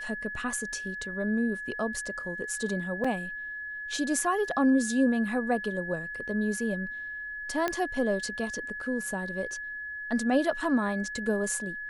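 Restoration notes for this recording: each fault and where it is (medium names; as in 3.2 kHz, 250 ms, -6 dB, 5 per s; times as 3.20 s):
whine 1.7 kHz -35 dBFS
3.04 s: dropout 4.7 ms
7.68 s: pop -14 dBFS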